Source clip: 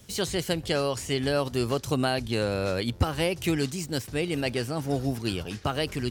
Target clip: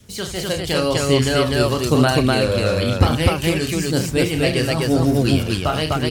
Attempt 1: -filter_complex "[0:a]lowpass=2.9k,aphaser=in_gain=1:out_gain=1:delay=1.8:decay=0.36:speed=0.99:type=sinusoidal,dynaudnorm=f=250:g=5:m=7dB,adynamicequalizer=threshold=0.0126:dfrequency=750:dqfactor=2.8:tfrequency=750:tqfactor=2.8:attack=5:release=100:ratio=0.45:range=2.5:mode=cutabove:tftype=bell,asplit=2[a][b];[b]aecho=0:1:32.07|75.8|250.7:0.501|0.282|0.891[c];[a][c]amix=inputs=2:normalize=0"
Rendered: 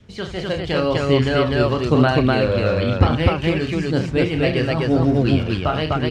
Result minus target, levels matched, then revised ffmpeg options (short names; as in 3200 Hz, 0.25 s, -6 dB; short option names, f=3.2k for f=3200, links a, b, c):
4000 Hz band -4.5 dB
-filter_complex "[0:a]aphaser=in_gain=1:out_gain=1:delay=1.8:decay=0.36:speed=0.99:type=sinusoidal,dynaudnorm=f=250:g=5:m=7dB,adynamicequalizer=threshold=0.0126:dfrequency=750:dqfactor=2.8:tfrequency=750:tqfactor=2.8:attack=5:release=100:ratio=0.45:range=2.5:mode=cutabove:tftype=bell,asplit=2[a][b];[b]aecho=0:1:32.07|75.8|250.7:0.501|0.282|0.891[c];[a][c]amix=inputs=2:normalize=0"